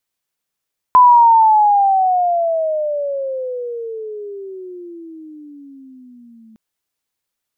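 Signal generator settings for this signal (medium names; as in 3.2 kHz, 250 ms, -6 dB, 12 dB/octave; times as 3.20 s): gliding synth tone sine, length 5.61 s, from 1.01 kHz, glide -26.5 st, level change -37 dB, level -4 dB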